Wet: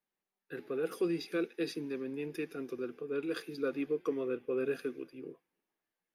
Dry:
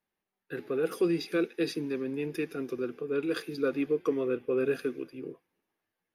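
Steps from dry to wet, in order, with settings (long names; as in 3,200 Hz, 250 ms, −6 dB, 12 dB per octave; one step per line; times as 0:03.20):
parametric band 75 Hz −9.5 dB 1 octave
level −5 dB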